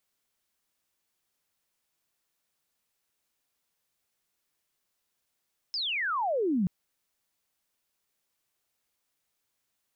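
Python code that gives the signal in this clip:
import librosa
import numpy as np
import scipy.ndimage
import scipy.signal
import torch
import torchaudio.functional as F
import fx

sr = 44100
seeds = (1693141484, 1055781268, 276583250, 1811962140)

y = fx.chirp(sr, length_s=0.93, from_hz=5300.0, to_hz=170.0, law='logarithmic', from_db=-29.0, to_db=-23.0)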